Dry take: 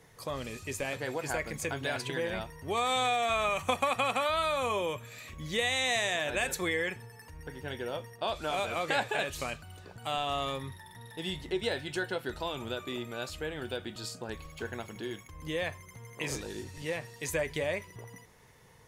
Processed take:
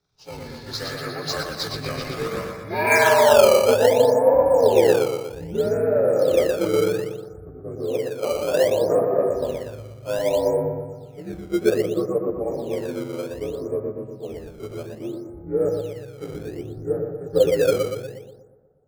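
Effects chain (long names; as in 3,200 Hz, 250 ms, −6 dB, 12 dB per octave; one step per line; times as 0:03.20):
partials spread apart or drawn together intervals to 84%
parametric band 3,000 Hz −11.5 dB 0.24 octaves
on a send: bucket-brigade delay 120 ms, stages 4,096, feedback 67%, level −3 dB
on the sum: low-pass filter sweep 4,800 Hz → 530 Hz, 0:02.66–0:03.45
in parallel at −4 dB: sample-and-hold swept by an LFO 14×, swing 160% 0.63 Hz
on the sum: multiband upward and downward expander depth 70%
level +4 dB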